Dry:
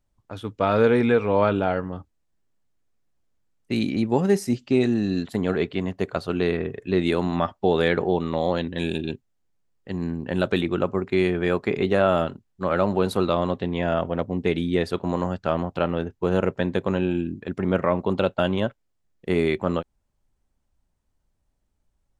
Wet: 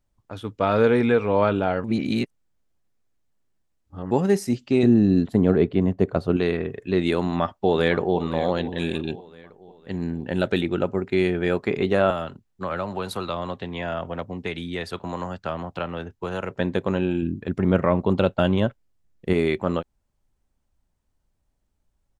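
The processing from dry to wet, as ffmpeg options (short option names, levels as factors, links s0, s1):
-filter_complex "[0:a]asettb=1/sr,asplit=3[s0][s1][s2];[s0]atrim=end=4.834[s3];[s1]atrim=start=4.83:end=6.37,asetpts=PTS-STARTPTS,afade=t=in:d=0.004:c=qsin,afade=t=out:st=1.536:d=0.004:c=qsin,tiltshelf=f=910:g=7.5[s4];[s2]atrim=start=6.366[s5];[s3][s4]acrossfade=d=0.004:c1=hsin:c2=qsin[s6];[s6][s5]acrossfade=d=0.004:c1=qsin:c2=hsin,asplit=2[s7][s8];[s8]afade=t=in:st=7.17:d=0.01,afade=t=out:st=8.19:d=0.01,aecho=0:1:510|1020|1530|2040|2550:0.199526|0.0997631|0.0498816|0.0249408|0.0124704[s9];[s7][s9]amix=inputs=2:normalize=0,asettb=1/sr,asplit=3[s10][s11][s12];[s10]atrim=end=9.924[s13];[s11]atrim=start=9.92:end=11.58,asetpts=PTS-STARTPTS,afade=t=in:d=0.004:c=qsin,afade=t=out:st=1.656:d=0.004:c=qsin,bandreject=f=1100:w=5.4[s14];[s12]atrim=start=11.576[s15];[s13][s14]acrossfade=d=0.004:c1=hsin:c2=qsin[s16];[s16][s15]acrossfade=d=0.004:c1=qsin:c2=hsin,asettb=1/sr,asplit=3[s17][s18][s19];[s17]atrim=end=12.104[s20];[s18]atrim=start=12.1:end=16.51,asetpts=PTS-STARTPTS,afade=t=in:d=0.004:c=qsin,afade=t=out:st=4.406:d=0.004:c=qsin,acrossover=split=170|660[s21][s22][s23];[s21]acompressor=threshold=0.0158:ratio=4[s24];[s22]acompressor=threshold=0.0178:ratio=4[s25];[s23]acompressor=threshold=0.0447:ratio=4[s26];[s24][s25][s26]amix=inputs=3:normalize=0[s27];[s19]atrim=start=16.506[s28];[s20][s27]acrossfade=d=0.004:c1=hsin:c2=qsin[s29];[s29][s28]acrossfade=d=0.004:c1=qsin:c2=hsin,asettb=1/sr,asplit=3[s30][s31][s32];[s30]atrim=end=17.224[s33];[s31]atrim=start=17.22:end=19.33,asetpts=PTS-STARTPTS,afade=t=in:d=0.004:c=qsin,afade=t=out:st=2.106:d=0.004:c=qsin,lowshelf=f=220:g=7[s34];[s32]atrim=start=19.326[s35];[s33][s34]acrossfade=d=0.004:c1=hsin:c2=qsin[s36];[s36][s35]acrossfade=d=0.004:c1=qsin:c2=hsin,asplit=3[s37][s38][s39];[s37]atrim=end=1.842[s40];[s38]atrim=start=1.838:end=4.112,asetpts=PTS-STARTPTS,areverse[s41];[s39]atrim=start=4.108[s42];[s40][s41]acrossfade=d=0.004:c1=hsin:c2=hsin[s43];[s43][s42]acrossfade=d=0.004:c1=hsin:c2=hsin"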